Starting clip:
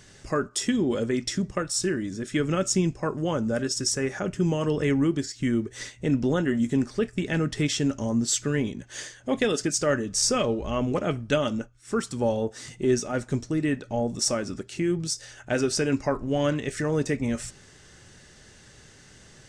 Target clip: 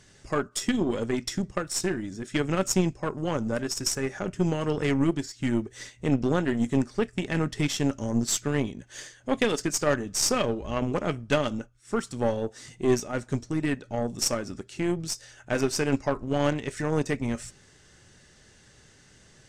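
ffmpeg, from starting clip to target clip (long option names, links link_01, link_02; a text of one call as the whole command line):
ffmpeg -i in.wav -af "aeval=exprs='0.335*(cos(1*acos(clip(val(0)/0.335,-1,1)))-cos(1*PI/2))+0.0596*(cos(2*acos(clip(val(0)/0.335,-1,1)))-cos(2*PI/2))+0.00944*(cos(6*acos(clip(val(0)/0.335,-1,1)))-cos(6*PI/2))+0.0188*(cos(7*acos(clip(val(0)/0.335,-1,1)))-cos(7*PI/2))':channel_layout=same" -ar 32000 -c:a aac -b:a 96k out.aac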